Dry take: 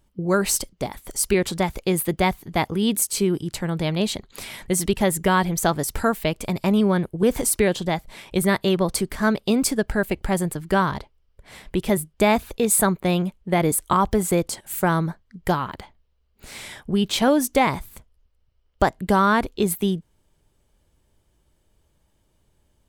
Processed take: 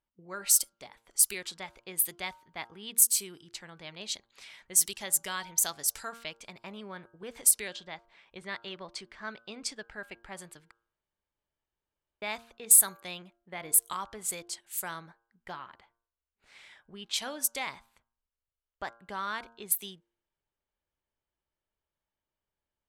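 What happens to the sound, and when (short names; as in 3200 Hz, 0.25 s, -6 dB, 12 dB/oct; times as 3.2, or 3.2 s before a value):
3.4–6.51 bell 6000 Hz +4.5 dB
7.51–9.92 LPF 6400 Hz
10.71–12.22 room tone
whole clip: pre-emphasis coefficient 0.97; de-hum 115.7 Hz, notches 14; low-pass opened by the level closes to 1500 Hz, open at -21.5 dBFS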